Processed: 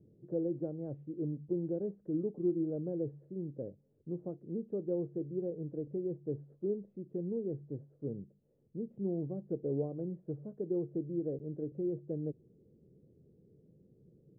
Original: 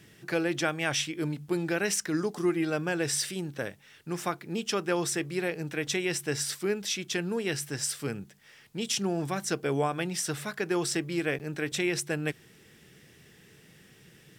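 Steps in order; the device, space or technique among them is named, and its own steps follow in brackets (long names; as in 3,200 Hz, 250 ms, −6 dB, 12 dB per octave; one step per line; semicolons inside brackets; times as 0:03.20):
under water (low-pass filter 440 Hz 24 dB per octave; parametric band 540 Hz +7 dB 0.48 octaves)
level −5 dB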